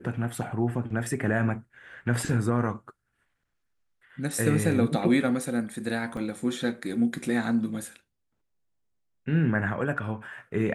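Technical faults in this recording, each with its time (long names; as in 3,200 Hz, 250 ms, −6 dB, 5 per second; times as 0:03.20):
0:06.17: drop-out 2 ms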